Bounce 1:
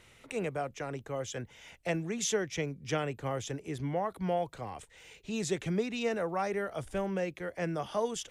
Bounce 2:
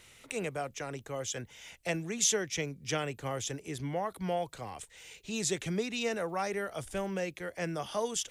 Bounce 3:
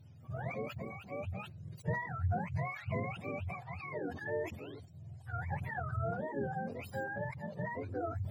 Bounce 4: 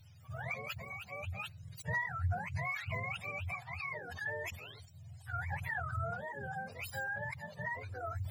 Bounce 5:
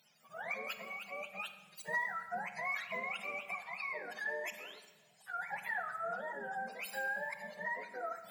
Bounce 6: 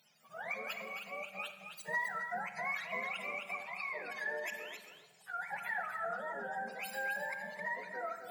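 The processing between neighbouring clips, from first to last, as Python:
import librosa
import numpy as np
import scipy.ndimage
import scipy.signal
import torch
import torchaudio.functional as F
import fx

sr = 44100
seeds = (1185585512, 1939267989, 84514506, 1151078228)

y1 = fx.high_shelf(x, sr, hz=2900.0, db=10.0)
y1 = F.gain(torch.from_numpy(y1), -2.0).numpy()
y2 = fx.octave_mirror(y1, sr, pivot_hz=560.0)
y2 = fx.sustainer(y2, sr, db_per_s=73.0)
y2 = F.gain(torch.from_numpy(y2), -3.5).numpy()
y3 = fx.tone_stack(y2, sr, knobs='10-0-10')
y3 = F.gain(torch.from_numpy(y3), 10.0).numpy()
y4 = scipy.signal.sosfilt(scipy.signal.ellip(4, 1.0, 50, 200.0, 'highpass', fs=sr, output='sos'), y3)
y4 = fx.rev_schroeder(y4, sr, rt60_s=1.3, comb_ms=28, drr_db=9.5)
y4 = F.gain(torch.from_numpy(y4), 1.0).numpy()
y5 = y4 + 10.0 ** (-7.5 / 20.0) * np.pad(y4, (int(264 * sr / 1000.0), 0))[:len(y4)]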